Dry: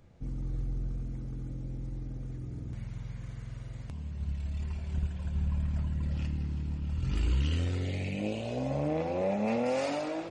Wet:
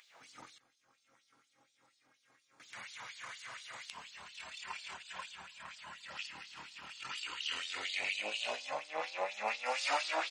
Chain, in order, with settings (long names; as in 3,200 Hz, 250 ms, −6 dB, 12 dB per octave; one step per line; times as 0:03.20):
brickwall limiter −30.5 dBFS, peak gain reduction 10 dB
0:00.58–0:02.60: tuned comb filter 270 Hz, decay 1.2 s, mix 90%
auto-filter high-pass sine 4.2 Hz 940–4,100 Hz
level +9.5 dB